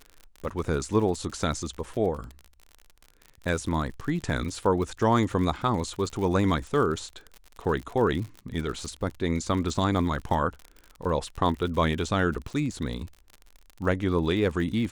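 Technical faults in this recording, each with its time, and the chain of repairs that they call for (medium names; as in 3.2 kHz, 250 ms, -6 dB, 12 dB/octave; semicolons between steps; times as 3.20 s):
crackle 58 per s -34 dBFS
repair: de-click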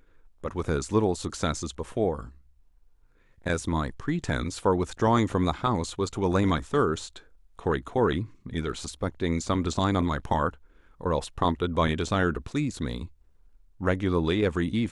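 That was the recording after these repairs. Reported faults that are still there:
nothing left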